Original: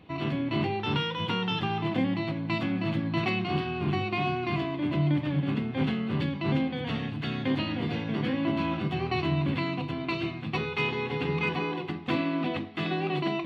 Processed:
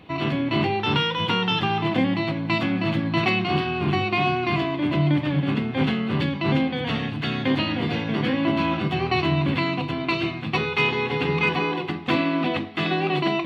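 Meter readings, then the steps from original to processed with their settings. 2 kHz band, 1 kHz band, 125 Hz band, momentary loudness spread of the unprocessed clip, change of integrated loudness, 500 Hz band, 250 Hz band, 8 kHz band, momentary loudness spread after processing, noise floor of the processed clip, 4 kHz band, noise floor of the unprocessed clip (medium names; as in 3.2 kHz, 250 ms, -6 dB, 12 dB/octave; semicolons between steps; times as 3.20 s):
+8.0 dB, +7.5 dB, +4.5 dB, 4 LU, +6.0 dB, +6.0 dB, +5.0 dB, no reading, 4 LU, -30 dBFS, +8.0 dB, -36 dBFS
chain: bass shelf 410 Hz -4 dB; trim +8 dB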